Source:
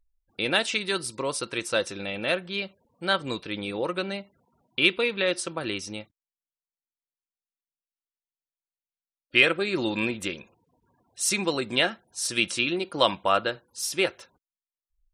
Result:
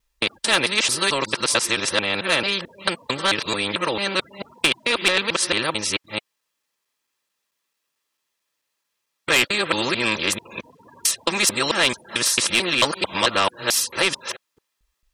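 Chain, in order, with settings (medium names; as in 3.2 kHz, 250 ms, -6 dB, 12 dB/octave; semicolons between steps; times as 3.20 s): time reversed locally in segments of 221 ms; comb of notches 730 Hz; overdrive pedal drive 10 dB, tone 5 kHz, clips at -5 dBFS; spectrum-flattening compressor 2:1; trim +3 dB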